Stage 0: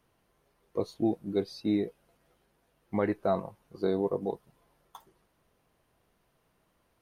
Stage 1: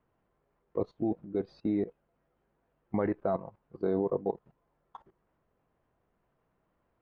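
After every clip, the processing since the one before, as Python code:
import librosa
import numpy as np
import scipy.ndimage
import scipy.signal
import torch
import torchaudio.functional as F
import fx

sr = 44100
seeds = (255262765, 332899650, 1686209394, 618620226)

y = scipy.signal.sosfilt(scipy.signal.butter(2, 1700.0, 'lowpass', fs=sr, output='sos'), x)
y = fx.level_steps(y, sr, step_db=16)
y = y * librosa.db_to_amplitude(4.0)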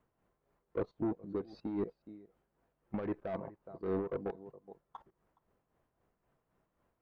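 y = x + 10.0 ** (-20.5 / 20.0) * np.pad(x, (int(419 * sr / 1000.0), 0))[:len(x)]
y = 10.0 ** (-26.5 / 20.0) * np.tanh(y / 10.0 ** (-26.5 / 20.0))
y = y * (1.0 - 0.58 / 2.0 + 0.58 / 2.0 * np.cos(2.0 * np.pi * 3.8 * (np.arange(len(y)) / sr)))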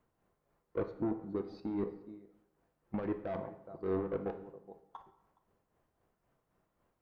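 y = fx.rev_plate(x, sr, seeds[0], rt60_s=0.79, hf_ratio=0.8, predelay_ms=0, drr_db=7.5)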